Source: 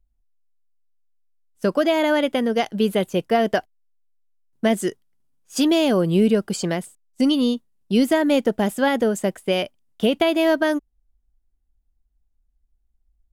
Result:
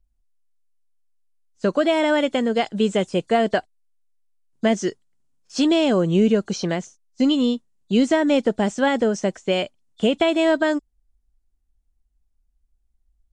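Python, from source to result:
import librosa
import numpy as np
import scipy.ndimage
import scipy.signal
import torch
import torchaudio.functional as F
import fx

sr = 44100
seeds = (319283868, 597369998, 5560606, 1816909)

y = fx.freq_compress(x, sr, knee_hz=3400.0, ratio=1.5)
y = fx.high_shelf(y, sr, hz=9200.0, db=7.0, at=(1.89, 3.47))
y = fx.buffer_glitch(y, sr, at_s=(5.45,), block=1024, repeats=1)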